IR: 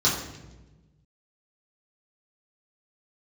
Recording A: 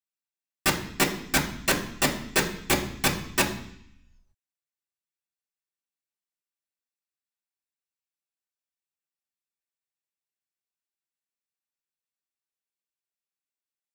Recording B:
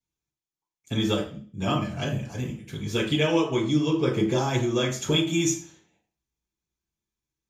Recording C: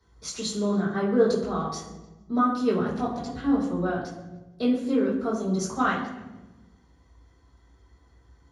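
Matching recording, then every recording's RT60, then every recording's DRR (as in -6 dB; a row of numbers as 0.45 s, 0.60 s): C; 0.65 s, 0.40 s, 1.1 s; -3.0 dB, -6.5 dB, -8.0 dB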